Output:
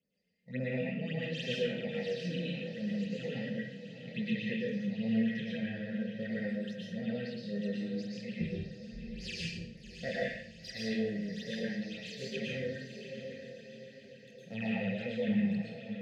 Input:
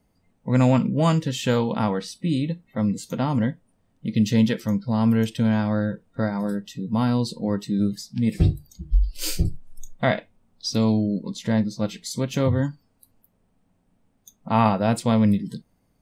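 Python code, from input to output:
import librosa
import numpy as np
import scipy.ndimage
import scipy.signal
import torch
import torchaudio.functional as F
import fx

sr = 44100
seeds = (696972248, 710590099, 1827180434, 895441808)

y = fx.dead_time(x, sr, dead_ms=0.056)
y = fx.env_lowpass_down(y, sr, base_hz=2300.0, full_db=-16.0)
y = fx.chorus_voices(y, sr, voices=4, hz=0.23, base_ms=26, depth_ms=3.6, mix_pct=45)
y = fx.vowel_filter(y, sr, vowel='e')
y = fx.peak_eq(y, sr, hz=540.0, db=-11.0, octaves=0.55)
y = fx.echo_diffused(y, sr, ms=714, feedback_pct=51, wet_db=-9)
y = fx.phaser_stages(y, sr, stages=8, low_hz=390.0, high_hz=3100.0, hz=3.6, feedback_pct=45)
y = fx.curve_eq(y, sr, hz=(100.0, 170.0, 310.0, 460.0, 670.0, 1000.0, 1800.0, 3200.0), db=(0, 11, -7, 2, -3, -20, 3, 11))
y = fx.rev_plate(y, sr, seeds[0], rt60_s=0.58, hf_ratio=0.95, predelay_ms=100, drr_db=-4.5)
y = F.gain(torch.from_numpy(y), 3.5).numpy()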